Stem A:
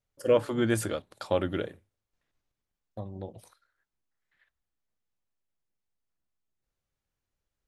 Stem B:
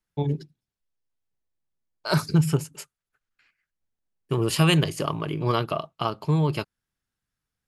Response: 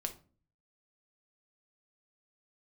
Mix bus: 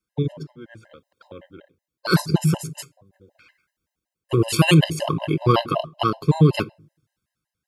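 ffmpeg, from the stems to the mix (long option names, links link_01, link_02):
-filter_complex "[0:a]lowpass=3900,lowshelf=frequency=68:gain=-3.5,volume=-19.5dB,asplit=2[link_01][link_02];[link_02]volume=-18.5dB[link_03];[1:a]equalizer=frequency=310:width=6.5:gain=4.5,volume=1.5dB,asplit=2[link_04][link_05];[link_05]volume=-7.5dB[link_06];[2:a]atrim=start_sample=2205[link_07];[link_03][link_06]amix=inputs=2:normalize=0[link_08];[link_08][link_07]afir=irnorm=-1:irlink=0[link_09];[link_01][link_04][link_09]amix=inputs=3:normalize=0,dynaudnorm=framelen=110:gausssize=11:maxgain=10.5dB,highpass=48,afftfilt=real='re*gt(sin(2*PI*5.3*pts/sr)*(1-2*mod(floor(b*sr/1024/530),2)),0)':imag='im*gt(sin(2*PI*5.3*pts/sr)*(1-2*mod(floor(b*sr/1024/530),2)),0)':win_size=1024:overlap=0.75"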